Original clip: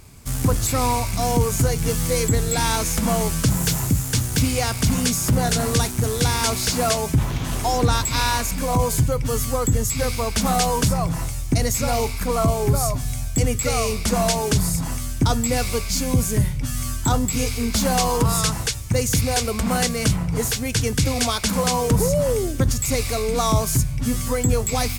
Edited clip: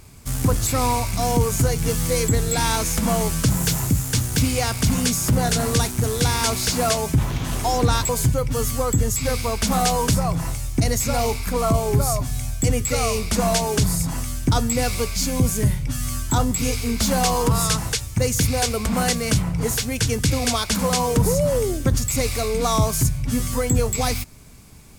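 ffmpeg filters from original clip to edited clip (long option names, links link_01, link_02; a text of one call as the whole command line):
ffmpeg -i in.wav -filter_complex "[0:a]asplit=2[link_01][link_02];[link_01]atrim=end=8.092[link_03];[link_02]atrim=start=8.828[link_04];[link_03][link_04]acrossfade=duration=0.004:curve1=hsin:curve2=hsin" out.wav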